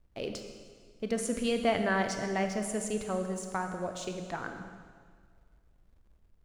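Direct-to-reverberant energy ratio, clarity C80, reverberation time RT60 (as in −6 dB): 5.5 dB, 7.5 dB, 1.8 s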